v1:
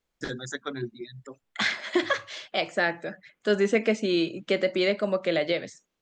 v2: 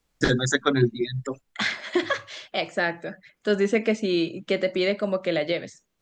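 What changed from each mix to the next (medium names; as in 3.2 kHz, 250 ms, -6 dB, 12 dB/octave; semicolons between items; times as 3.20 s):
first voice +11.5 dB; master: add bass shelf 170 Hz +5.5 dB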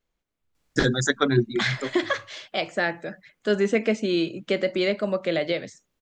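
first voice: entry +0.55 s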